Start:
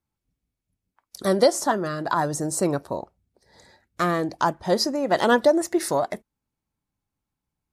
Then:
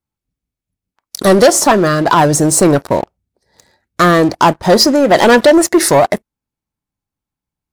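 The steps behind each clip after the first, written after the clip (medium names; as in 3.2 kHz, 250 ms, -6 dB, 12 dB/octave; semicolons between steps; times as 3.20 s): waveshaping leveller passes 3; trim +5 dB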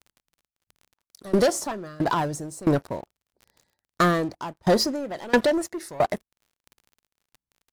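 crackle 41 per s -25 dBFS; bass shelf 170 Hz +4.5 dB; sawtooth tremolo in dB decaying 1.5 Hz, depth 23 dB; trim -9 dB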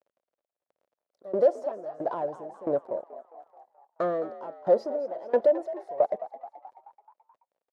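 band-pass filter 560 Hz, Q 3.9; frequency-shifting echo 215 ms, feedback 56%, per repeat +55 Hz, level -14.5 dB; trim +2.5 dB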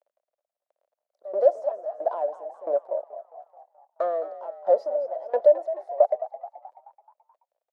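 resonant high-pass 620 Hz, resonance Q 3.4; trim -5 dB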